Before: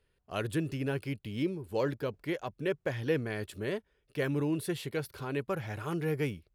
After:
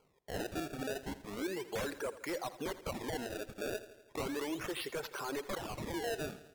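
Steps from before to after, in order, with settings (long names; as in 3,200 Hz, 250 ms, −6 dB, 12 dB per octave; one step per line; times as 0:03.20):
low-pass that shuts in the quiet parts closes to 2,300 Hz, open at −31 dBFS
high-pass filter 570 Hz 12 dB per octave
wave folding −34 dBFS
high-shelf EQ 2,400 Hz −10.5 dB
brickwall limiter −44 dBFS, peak gain reduction 10 dB
sample-and-hold swept by an LFO 24×, swing 160% 0.35 Hz
reverb reduction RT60 1.1 s
repeating echo 83 ms, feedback 60%, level −15 dB
level +14 dB
AAC 192 kbit/s 48,000 Hz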